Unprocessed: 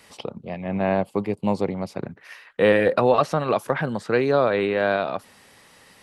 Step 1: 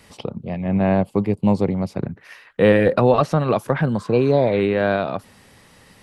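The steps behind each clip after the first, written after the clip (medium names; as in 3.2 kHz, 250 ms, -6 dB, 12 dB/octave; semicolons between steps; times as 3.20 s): spectral replace 4.00–4.57 s, 1–2.3 kHz both; bass shelf 240 Hz +12 dB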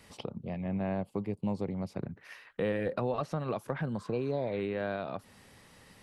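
compression 2:1, threshold -29 dBFS, peak gain reduction 11 dB; trim -7 dB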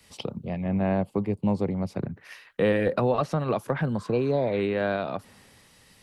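three bands expanded up and down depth 40%; trim +8 dB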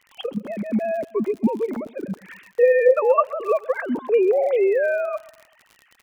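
formants replaced by sine waves; crackle 55 per s -39 dBFS; feedback delay 127 ms, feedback 41%, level -20.5 dB; trim +5.5 dB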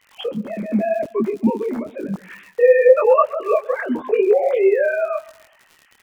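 detune thickener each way 32 cents; trim +6.5 dB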